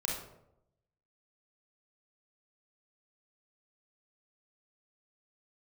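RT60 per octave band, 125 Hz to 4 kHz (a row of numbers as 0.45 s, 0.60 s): 1.1 s, 0.90 s, 0.90 s, 0.75 s, 0.55 s, 0.45 s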